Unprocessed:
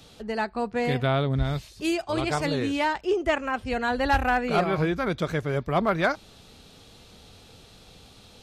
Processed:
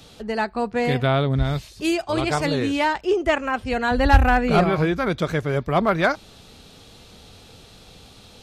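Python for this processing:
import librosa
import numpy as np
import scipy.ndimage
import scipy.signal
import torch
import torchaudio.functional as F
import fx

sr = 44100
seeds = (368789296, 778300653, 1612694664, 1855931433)

y = fx.low_shelf(x, sr, hz=160.0, db=11.5, at=(3.91, 4.7))
y = F.gain(torch.from_numpy(y), 4.0).numpy()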